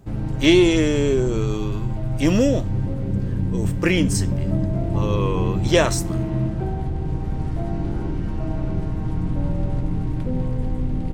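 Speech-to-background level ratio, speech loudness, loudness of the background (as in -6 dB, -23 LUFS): 4.5 dB, -21.0 LUFS, -25.5 LUFS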